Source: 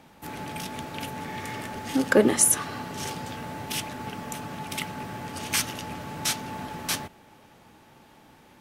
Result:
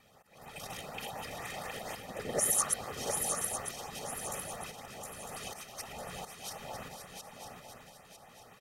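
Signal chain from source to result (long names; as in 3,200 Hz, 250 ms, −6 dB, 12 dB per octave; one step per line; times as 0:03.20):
delay that plays each chunk backwards 114 ms, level −3 dB
volume swells 524 ms
high-pass filter 250 Hz 12 dB per octave
random phases in short frames
comb filter 1.6 ms, depth 69%
feedback echo with a long and a short gap by turns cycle 952 ms, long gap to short 3 to 1, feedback 38%, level −5.5 dB
auto-filter notch saw up 4.1 Hz 550–5,300 Hz
level −7 dB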